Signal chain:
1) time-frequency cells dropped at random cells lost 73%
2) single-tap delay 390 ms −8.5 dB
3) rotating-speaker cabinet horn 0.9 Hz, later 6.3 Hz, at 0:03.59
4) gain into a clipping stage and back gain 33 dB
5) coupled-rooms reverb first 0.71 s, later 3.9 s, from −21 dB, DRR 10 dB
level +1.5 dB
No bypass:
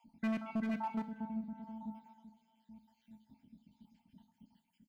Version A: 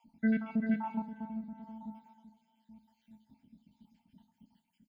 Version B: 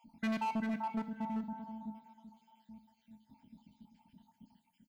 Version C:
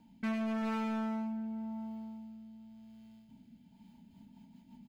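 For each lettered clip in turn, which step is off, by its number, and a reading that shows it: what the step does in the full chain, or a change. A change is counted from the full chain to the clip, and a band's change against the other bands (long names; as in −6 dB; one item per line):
4, distortion level −7 dB
3, change in momentary loudness spread +8 LU
1, 500 Hz band +2.5 dB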